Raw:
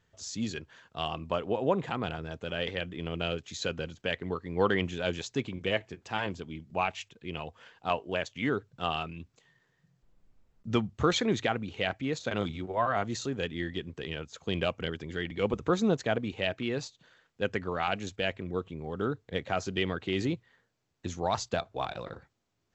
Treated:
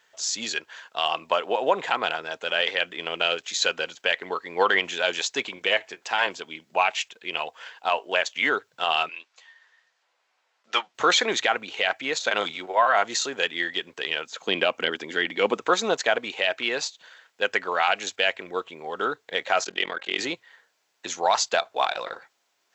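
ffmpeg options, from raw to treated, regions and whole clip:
ffmpeg -i in.wav -filter_complex "[0:a]asettb=1/sr,asplit=3[link_01][link_02][link_03];[link_01]atrim=end=9.094[link_04];[link_02]atrim=start=9.09:end=10.95,asetpts=PTS-STARTPTS,afade=type=in:duration=0.004:curve=qsin,afade=type=out:start_time=1.856:duration=0.004:curve=qsin,highpass=670,lowpass=5600,asplit=2[link_05][link_06];[link_06]adelay=12,volume=-5dB[link_07];[link_05][link_07]amix=inputs=2:normalize=0,atrim=end_sample=82026[link_08];[link_03]atrim=start=10.946[link_09];[link_04][link_08]acrossfade=duration=0.004:curve1=hsin:curve2=qsin[link_10];[link_10][link_09]acrossfade=duration=0.004:curve1=qsin:curve2=hsin,asettb=1/sr,asplit=3[link_11][link_12][link_13];[link_11]atrim=end=14.254[link_14];[link_12]atrim=start=14.25:end=15.61,asetpts=PTS-STARTPTS,afade=type=in:duration=0.004:curve=qsin,afade=type=out:start_time=1.356:duration=0.004:curve=qsin,acrossover=split=4300[link_15][link_16];[link_16]acompressor=threshold=-55dB:ratio=4:attack=1:release=60[link_17];[link_15][link_17]amix=inputs=2:normalize=0,equalizer=frequency=250:width_type=o:width=1.2:gain=9[link_18];[link_13]atrim=start=15.606[link_19];[link_14][link_18]acrossfade=duration=0.004:curve1=hsin:curve2=qsin[link_20];[link_20][link_19]acrossfade=duration=0.004:curve1=qsin:curve2=hsin,asettb=1/sr,asplit=3[link_21][link_22][link_23];[link_21]atrim=end=19.644[link_24];[link_22]atrim=start=19.64:end=20.19,asetpts=PTS-STARTPTS,afade=type=in:duration=0.004:curve=qsin,afade=type=out:start_time=0.546:duration=0.004:curve=qsin,bandreject=frequency=268.2:width_type=h:width=4,bandreject=frequency=536.4:width_type=h:width=4,bandreject=frequency=804.6:width_type=h:width=4,bandreject=frequency=1072.8:width_type=h:width=4,bandreject=frequency=1341:width_type=h:width=4,bandreject=frequency=1609.2:width_type=h:width=4,bandreject=frequency=1877.4:width_type=h:width=4,bandreject=frequency=2145.6:width_type=h:width=4,tremolo=f=42:d=0.974[link_25];[link_23]atrim=start=20.186[link_26];[link_24][link_25]acrossfade=duration=0.004:curve1=hsin:curve2=qsin[link_27];[link_27][link_26]acrossfade=duration=0.004:curve1=qsin:curve2=hsin,highpass=750,bandreject=frequency=1200:width=14,alimiter=level_in=21dB:limit=-1dB:release=50:level=0:latency=1,volume=-8dB" out.wav

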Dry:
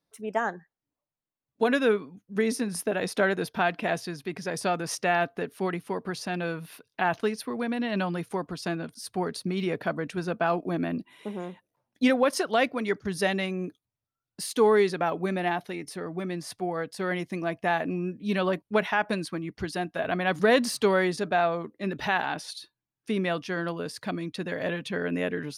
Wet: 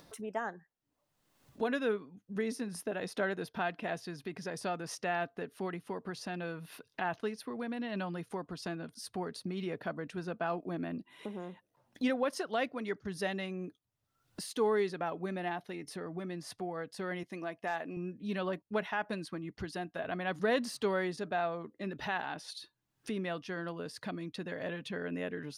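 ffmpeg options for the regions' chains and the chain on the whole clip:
ffmpeg -i in.wav -filter_complex "[0:a]asettb=1/sr,asplit=3[link_01][link_02][link_03];[link_01]atrim=end=17.234[link_04];[link_02]atrim=start=17.23:end=17.97,asetpts=PTS-STARTPTS,afade=type=in:duration=0.004:curve=qsin,afade=type=out:start_time=0.736:duration=0.004:curve=qsin,highpass=frequency=340:poles=1,asoftclip=type=hard:threshold=-15dB[link_05];[link_03]atrim=start=17.966[link_06];[link_04][link_05]acrossfade=duration=0.004:curve1=hsin:curve2=qsin[link_07];[link_07][link_06]acrossfade=duration=0.004:curve1=qsin:curve2=hsin,acompressor=mode=upward:threshold=-26dB:ratio=2.5,highshelf=frequency=7100:gain=-5,bandreject=frequency=2300:width=19,volume=-9dB" out.wav

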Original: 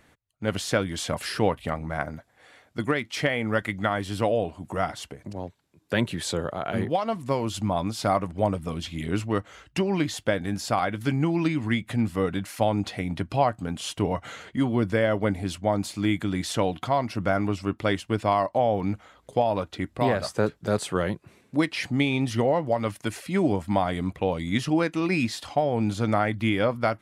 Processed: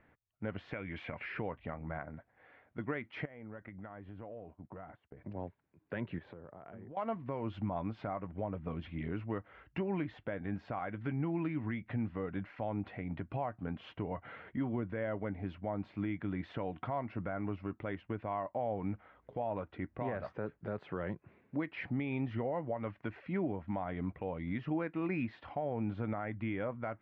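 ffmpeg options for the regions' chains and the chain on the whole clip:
ffmpeg -i in.wav -filter_complex "[0:a]asettb=1/sr,asplit=3[link_01][link_02][link_03];[link_01]atrim=end=0.724[link_04];[link_02]atrim=start=0.72:end=1.39,asetpts=PTS-STARTPTS,afade=type=in:duration=0.004:curve=qsin,afade=type=out:start_time=0.666:duration=0.004:curve=qsin,equalizer=frequency=2300:width=2.9:gain=13,acompressor=threshold=-28dB:ratio=5:attack=3.2:release=140:knee=1:detection=peak[link_05];[link_03]atrim=start=1.386[link_06];[link_04][link_05]acrossfade=duration=0.004:curve1=hsin:curve2=qsin[link_07];[link_07][link_06]acrossfade=duration=0.004:curve1=qsin:curve2=hsin,asettb=1/sr,asplit=3[link_08][link_09][link_10];[link_08]atrim=end=3.254[link_11];[link_09]atrim=start=3.25:end=5.17,asetpts=PTS-STARTPTS,afade=type=in:duration=0.004:curve=qsin,afade=type=out:start_time=1.916:duration=0.004:curve=qsin,lowpass=frequency=1400:poles=1,agate=range=-33dB:threshold=-37dB:ratio=3:release=100:detection=peak,acompressor=threshold=-37dB:ratio=6:attack=3.2:release=140:knee=1:detection=peak[link_12];[link_10]atrim=start=5.166[link_13];[link_11][link_12]acrossfade=duration=0.004:curve1=hsin:curve2=qsin[link_14];[link_14][link_13]acrossfade=duration=0.004:curve1=qsin:curve2=hsin,asettb=1/sr,asplit=3[link_15][link_16][link_17];[link_15]atrim=end=6.184[link_18];[link_16]atrim=start=6.18:end=6.97,asetpts=PTS-STARTPTS,afade=type=in:duration=0.004:curve=qsin,afade=type=out:start_time=0.786:duration=0.004:curve=qsin,lowpass=frequency=1100:poles=1,acompressor=threshold=-38dB:ratio=20:attack=3.2:release=140:knee=1:detection=peak[link_19];[link_17]atrim=start=6.966[link_20];[link_18][link_19]acrossfade=duration=0.004:curve1=hsin:curve2=qsin[link_21];[link_21][link_20]acrossfade=duration=0.004:curve1=qsin:curve2=hsin,lowpass=frequency=2300:width=0.5412,lowpass=frequency=2300:width=1.3066,bandreject=frequency=1200:width=28,alimiter=limit=-19.5dB:level=0:latency=1:release=214,volume=-7dB" out.wav

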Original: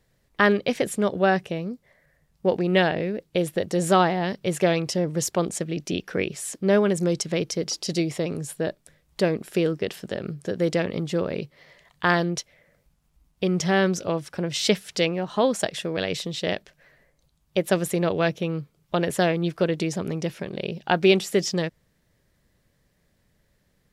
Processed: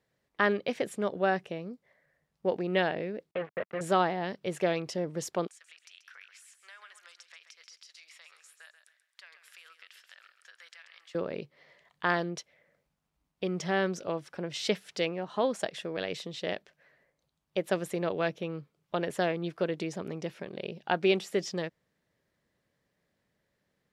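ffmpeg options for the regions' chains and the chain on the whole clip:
ffmpeg -i in.wav -filter_complex "[0:a]asettb=1/sr,asplit=3[link_01][link_02][link_03];[link_01]atrim=end=3.314[link_04];[link_02]atrim=start=3.31:end=3.81,asetpts=PTS-STARTPTS,afade=type=in:duration=0.004:curve=qsin,afade=type=out:start_time=0.496:duration=0.004:curve=qsin,aecho=1:1:1.5:0.7,atrim=end_sample=22050,acrusher=bits=3:mix=0:aa=0.5,highpass=130,equalizer=frequency=180:width_type=q:width=4:gain=-7,equalizer=frequency=500:width_type=q:width=4:gain=-4,equalizer=frequency=830:width_type=q:width=4:gain=-8,lowpass=frequency=2300:width=0.5412,lowpass=frequency=2300:width=1.3066[link_05];[link_03]atrim=start=3.806[link_06];[link_04][link_05]acrossfade=duration=0.004:curve1=hsin:curve2=qsin[link_07];[link_07][link_06]acrossfade=duration=0.004:curve1=qsin:curve2=hsin,asettb=1/sr,asplit=3[link_08][link_09][link_10];[link_08]atrim=end=5.474[link_11];[link_09]atrim=start=5.47:end=11.15,asetpts=PTS-STARTPTS,afade=type=in:duration=0.004:curve=qsin,afade=type=out:start_time=5.676:duration=0.004:curve=qsin,highpass=frequency=1300:width=0.5412,highpass=frequency=1300:width=1.3066,acompressor=threshold=-41dB:ratio=5:attack=3.2:release=140:knee=1:detection=peak,aecho=1:1:134|268|402|536:0.316|0.104|0.0344|0.0114,atrim=end_sample=250488[link_12];[link_10]atrim=start=11.146[link_13];[link_11][link_12]acrossfade=duration=0.004:curve1=hsin:curve2=qsin[link_14];[link_14][link_13]acrossfade=duration=0.004:curve1=qsin:curve2=hsin,highpass=frequency=270:poles=1,aemphasis=mode=reproduction:type=cd,volume=-6dB" out.wav

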